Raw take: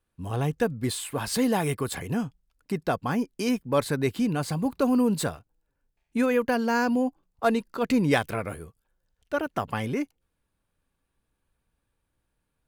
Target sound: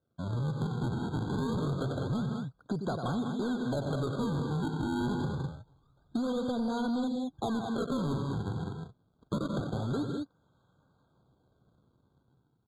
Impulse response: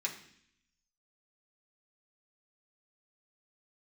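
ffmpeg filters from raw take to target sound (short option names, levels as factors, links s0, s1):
-filter_complex "[0:a]asettb=1/sr,asplit=3[s0][s1][s2];[s0]atrim=end=5.244[s3];[s1]atrim=start=5.24:end=7.81,asetpts=PTS-STARTPTS,afade=t=in:d=0.004:c=qsin,afade=t=out:st=2.566:d=0.004:c=qsin,aemphasis=mode=reproduction:type=bsi[s4];[s2]atrim=start=7.806[s5];[s3][s4]acrossfade=d=0.004:c1=hsin:c2=qsin[s6];[s6][s5]acrossfade=d=0.004:c1=qsin:c2=hsin,dynaudnorm=f=220:g=5:m=3.16,acrusher=samples=42:mix=1:aa=0.000001:lfo=1:lforange=67.2:lforate=0.26,alimiter=limit=0.282:level=0:latency=1:release=217,highpass=100,lowpass=5100,equalizer=f=130:w=2.1:g=7.5,aecho=1:1:93.29|157.4|201.2:0.282|0.251|0.316,asoftclip=type=tanh:threshold=0.158,acompressor=threshold=0.0251:ratio=4,afftfilt=real='re*eq(mod(floor(b*sr/1024/1600),2),0)':imag='im*eq(mod(floor(b*sr/1024/1600),2),0)':win_size=1024:overlap=0.75"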